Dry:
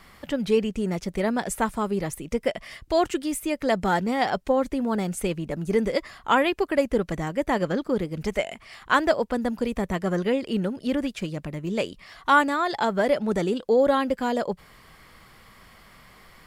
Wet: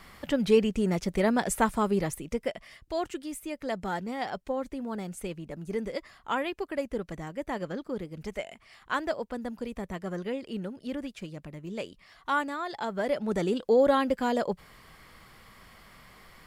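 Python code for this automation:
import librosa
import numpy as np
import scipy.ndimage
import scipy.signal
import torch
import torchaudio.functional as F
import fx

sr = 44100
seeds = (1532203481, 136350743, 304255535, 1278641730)

y = fx.gain(x, sr, db=fx.line((1.97, 0.0), (2.72, -9.5), (12.81, -9.5), (13.56, -2.0)))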